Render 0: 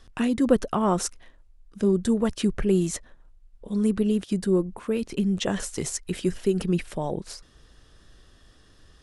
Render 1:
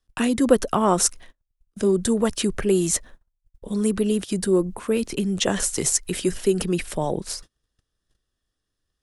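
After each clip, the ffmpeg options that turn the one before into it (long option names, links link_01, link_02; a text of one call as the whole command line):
ffmpeg -i in.wav -filter_complex "[0:a]agate=range=-30dB:threshold=-46dB:ratio=16:detection=peak,highshelf=frequency=7300:gain=11,acrossover=split=260|950|3200[link_01][link_02][link_03][link_04];[link_01]alimiter=level_in=5.5dB:limit=-24dB:level=0:latency=1,volume=-5.5dB[link_05];[link_05][link_02][link_03][link_04]amix=inputs=4:normalize=0,volume=4.5dB" out.wav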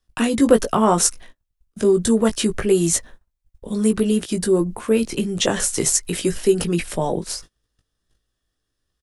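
ffmpeg -i in.wav -filter_complex "[0:a]asplit=2[link_01][link_02];[link_02]adelay=18,volume=-6dB[link_03];[link_01][link_03]amix=inputs=2:normalize=0,volume=2dB" out.wav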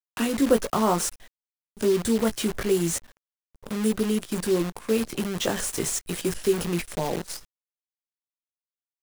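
ffmpeg -i in.wav -filter_complex "[0:a]acrossover=split=2500[link_01][link_02];[link_02]asoftclip=type=tanh:threshold=-19dB[link_03];[link_01][link_03]amix=inputs=2:normalize=0,acrusher=bits=5:dc=4:mix=0:aa=0.000001,volume=-6dB" out.wav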